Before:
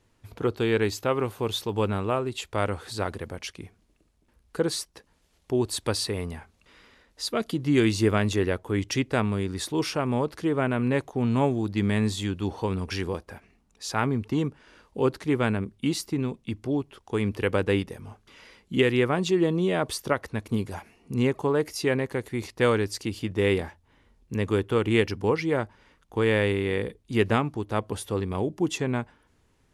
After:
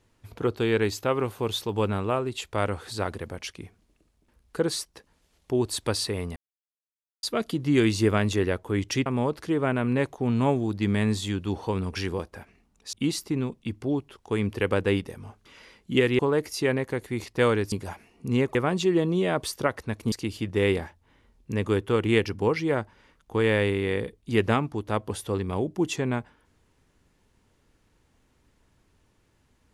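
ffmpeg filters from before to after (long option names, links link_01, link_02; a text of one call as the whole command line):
ffmpeg -i in.wav -filter_complex "[0:a]asplit=9[link_01][link_02][link_03][link_04][link_05][link_06][link_07][link_08][link_09];[link_01]atrim=end=6.36,asetpts=PTS-STARTPTS,afade=type=out:start_time=6.356:duration=0.004:curve=hsin[link_10];[link_02]atrim=start=6.36:end=7.23,asetpts=PTS-STARTPTS,volume=0[link_11];[link_03]atrim=start=7.23:end=9.062,asetpts=PTS-STARTPTS,afade=type=in:duration=0.004:curve=hsin[link_12];[link_04]atrim=start=10.008:end=13.882[link_13];[link_05]atrim=start=15.748:end=19.012[link_14];[link_06]atrim=start=21.408:end=22.942[link_15];[link_07]atrim=start=20.578:end=21.412[link_16];[link_08]atrim=start=19.008:end=20.582[link_17];[link_09]atrim=start=22.938[link_18];[link_10][link_11][link_12]concat=n=3:v=0:a=1[link_19];[link_19][link_13]acrossfade=duration=0.004:curve1=hsin:curve2=hsin[link_20];[link_20][link_14]acrossfade=duration=0.004:curve1=hsin:curve2=hsin[link_21];[link_21][link_15]acrossfade=duration=0.004:curve1=hsin:curve2=hsin[link_22];[link_22][link_16]acrossfade=duration=0.004:curve1=hsin:curve2=hsin[link_23];[link_23][link_17]acrossfade=duration=0.004:curve1=hsin:curve2=hsin[link_24];[link_24][link_18]acrossfade=duration=0.004:curve1=hsin:curve2=hsin" out.wav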